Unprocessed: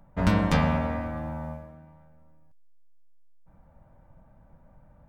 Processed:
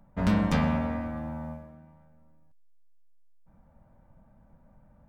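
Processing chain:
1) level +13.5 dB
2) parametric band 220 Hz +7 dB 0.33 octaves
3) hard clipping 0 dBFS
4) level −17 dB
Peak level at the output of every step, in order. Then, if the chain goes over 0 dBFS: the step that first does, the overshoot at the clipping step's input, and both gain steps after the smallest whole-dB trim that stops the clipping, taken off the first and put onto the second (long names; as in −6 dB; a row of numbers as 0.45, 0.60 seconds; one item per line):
+4.5, +5.5, 0.0, −17.0 dBFS
step 1, 5.5 dB
step 1 +7.5 dB, step 4 −11 dB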